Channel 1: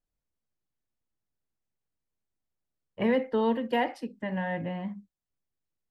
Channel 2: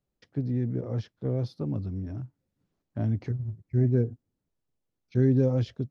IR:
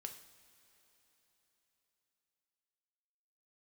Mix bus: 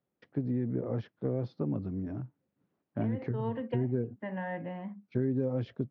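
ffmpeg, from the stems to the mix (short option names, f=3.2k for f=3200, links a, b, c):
-filter_complex "[0:a]volume=-4dB[a];[1:a]volume=2.5dB,asplit=2[b][c];[c]apad=whole_len=260621[d];[a][d]sidechaincompress=threshold=-33dB:ratio=8:attack=41:release=147[e];[e][b]amix=inputs=2:normalize=0,highpass=160,lowpass=2.2k,acompressor=threshold=-27dB:ratio=5"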